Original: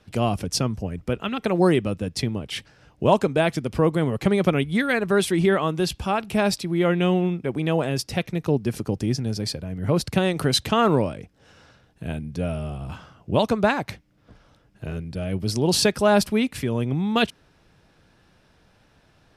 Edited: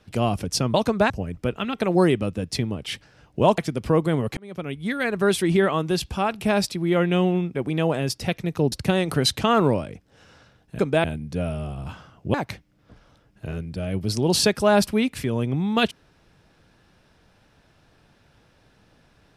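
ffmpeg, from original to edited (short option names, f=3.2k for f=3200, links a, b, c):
-filter_complex "[0:a]asplit=9[a][b][c][d][e][f][g][h][i];[a]atrim=end=0.742[j];[b]atrim=start=13.368:end=13.732[k];[c]atrim=start=0.738:end=3.222[l];[d]atrim=start=3.468:end=4.26,asetpts=PTS-STARTPTS,afade=t=out:st=0.788:d=0.004:c=hsin[m];[e]atrim=start=4.26:end=8.612,asetpts=PTS-STARTPTS,afade=t=in:d=0.9[n];[f]atrim=start=9.998:end=12.072[o];[g]atrim=start=3.218:end=3.472[p];[h]atrim=start=12.068:end=13.372[q];[i]atrim=start=13.728[r];[j][k]acrossfade=d=0.004:c1=hsin:c2=hsin[s];[s][l]acrossfade=d=0.004:c1=hsin:c2=hsin[t];[m][n]concat=n=2:v=0:a=1[u];[t][u]acrossfade=d=0.004:c1=hsin:c2=hsin[v];[v][o]acrossfade=d=0.004:c1=hsin:c2=hsin[w];[w][p]acrossfade=d=0.004:c1=hsin:c2=hsin[x];[x][q]acrossfade=d=0.004:c1=hsin:c2=hsin[y];[y][r]acrossfade=d=0.004:c1=hsin:c2=hsin"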